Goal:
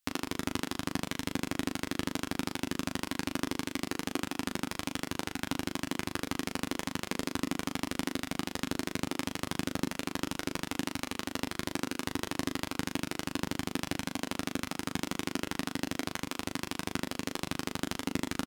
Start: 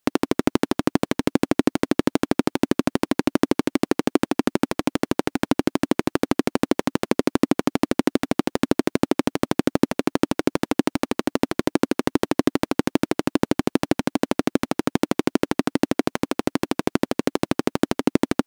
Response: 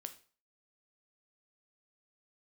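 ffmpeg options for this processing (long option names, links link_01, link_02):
-filter_complex "[0:a]equalizer=frequency=420:width=0.49:gain=-14.5,aecho=1:1:11|39:0.376|0.531,asplit=2[link_01][link_02];[1:a]atrim=start_sample=2205[link_03];[link_02][link_03]afir=irnorm=-1:irlink=0,volume=-4dB[link_04];[link_01][link_04]amix=inputs=2:normalize=0,volume=-7.5dB"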